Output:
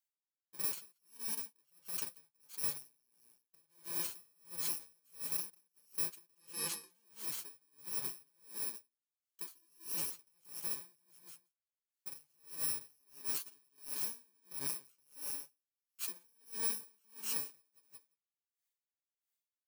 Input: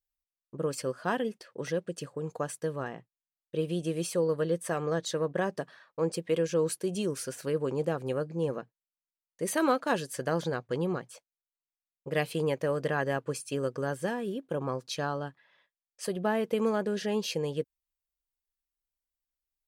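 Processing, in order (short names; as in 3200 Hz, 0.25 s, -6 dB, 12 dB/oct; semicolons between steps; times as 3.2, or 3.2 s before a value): FFT order left unsorted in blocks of 64 samples; HPF 580 Hz 6 dB/oct; high shelf 3800 Hz +6.5 dB; 6.4–6.91 LPF 11000 Hz 12 dB/oct; soft clip -13.5 dBFS, distortion -20 dB; flange 1.1 Hz, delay 5.5 ms, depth 9 ms, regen +31%; feedback echo 0.178 s, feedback 16%, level -8 dB; limiter -26.5 dBFS, peak gain reduction 11.5 dB; dB-linear tremolo 1.5 Hz, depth 39 dB; gain +1 dB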